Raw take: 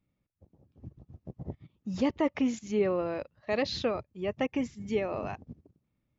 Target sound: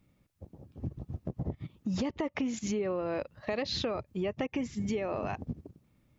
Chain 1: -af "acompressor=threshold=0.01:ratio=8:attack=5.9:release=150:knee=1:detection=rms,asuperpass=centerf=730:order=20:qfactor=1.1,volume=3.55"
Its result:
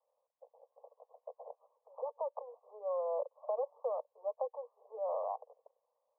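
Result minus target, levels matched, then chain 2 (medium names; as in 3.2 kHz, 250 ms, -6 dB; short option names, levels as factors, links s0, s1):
1 kHz band +4.0 dB
-af "acompressor=threshold=0.01:ratio=8:attack=5.9:release=150:knee=1:detection=rms,volume=3.55"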